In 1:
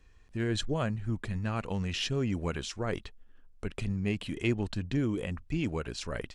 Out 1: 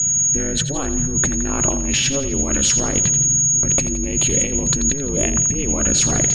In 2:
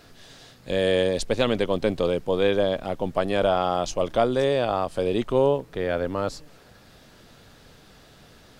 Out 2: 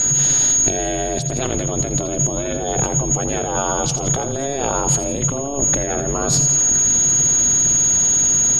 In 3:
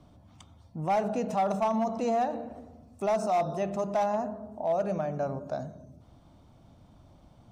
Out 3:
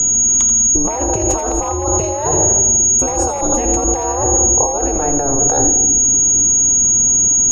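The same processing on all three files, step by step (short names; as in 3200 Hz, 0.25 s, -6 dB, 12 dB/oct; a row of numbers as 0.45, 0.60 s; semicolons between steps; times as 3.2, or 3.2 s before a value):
limiter -17 dBFS; whine 6700 Hz -32 dBFS; low shelf 140 Hz +6.5 dB; ring modulator 140 Hz; negative-ratio compressor -36 dBFS, ratio -1; on a send: split-band echo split 360 Hz, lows 0.762 s, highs 84 ms, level -12 dB; on the sum: normalise peaks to -1.5 dBFS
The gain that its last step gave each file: +16.0, +16.0, +20.5 dB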